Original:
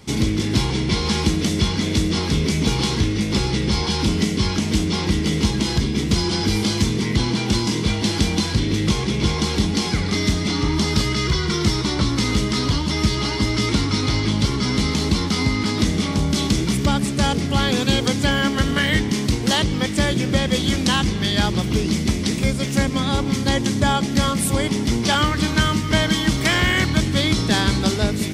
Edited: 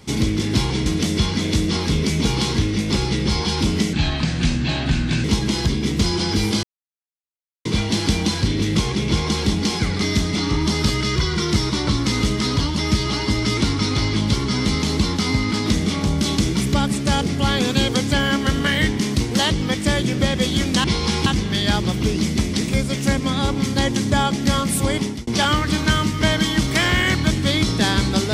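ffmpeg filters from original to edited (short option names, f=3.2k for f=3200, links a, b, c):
-filter_complex "[0:a]asplit=9[a][b][c][d][e][f][g][h][i];[a]atrim=end=0.862[j];[b]atrim=start=1.278:end=4.354[k];[c]atrim=start=4.35:end=5.36,asetpts=PTS-STARTPTS,asetrate=33957,aresample=44100,atrim=end_sample=57845,asetpts=PTS-STARTPTS[l];[d]atrim=start=5.356:end=6.75,asetpts=PTS-STARTPTS,afade=t=out:st=1.39:d=0.004:c=hsin[m];[e]atrim=start=6.75:end=7.77,asetpts=PTS-STARTPTS,volume=0[n];[f]atrim=start=7.77:end=20.962,asetpts=PTS-STARTPTS,afade=t=in:d=0.004:c=hsin[o];[g]atrim=start=0.858:end=1.282[p];[h]atrim=start=20.958:end=24.97,asetpts=PTS-STARTPTS,afade=t=out:st=3.742:d=0.27[q];[i]atrim=start=24.97,asetpts=PTS-STARTPTS,afade=t=in:d=0.004:c=hsin[r];[j][k]acrossfade=d=0.004:c1=hsin:c2=hsin[s];[s][l]acrossfade=d=0.004:c1=hsin:c2=hsin[t];[m][n][o]concat=n=3:v=0:a=1[u];[t][u]acrossfade=d=0.004:c1=hsin:c2=hsin[v];[v][p]acrossfade=d=0.004:c1=hsin:c2=hsin[w];[q][r]concat=n=2:v=0:a=1[x];[w][x]acrossfade=d=0.004:c1=hsin:c2=hsin"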